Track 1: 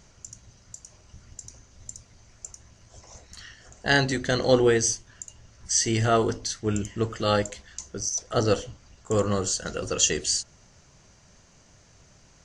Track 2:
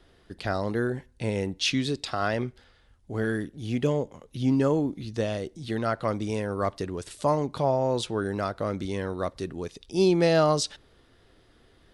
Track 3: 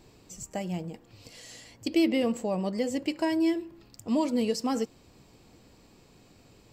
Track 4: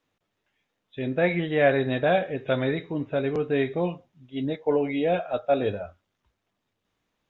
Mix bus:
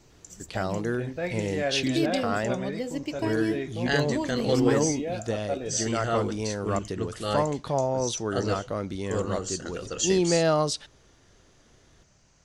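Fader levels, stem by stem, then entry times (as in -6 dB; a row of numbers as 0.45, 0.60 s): -6.0, -1.5, -3.5, -8.5 dB; 0.00, 0.10, 0.00, 0.00 s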